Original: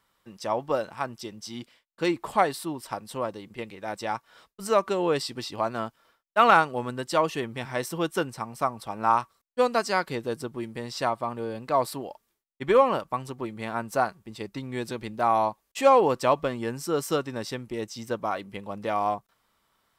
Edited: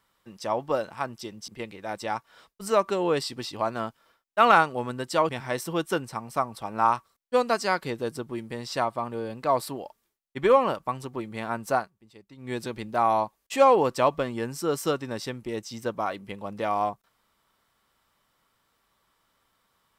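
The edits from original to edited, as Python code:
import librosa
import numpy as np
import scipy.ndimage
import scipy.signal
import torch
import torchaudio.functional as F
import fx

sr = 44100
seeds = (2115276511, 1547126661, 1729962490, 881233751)

y = fx.edit(x, sr, fx.cut(start_s=1.48, length_s=1.99),
    fx.cut(start_s=7.28, length_s=0.26),
    fx.fade_down_up(start_s=14.0, length_s=0.77, db=-15.0, fade_s=0.16), tone=tone)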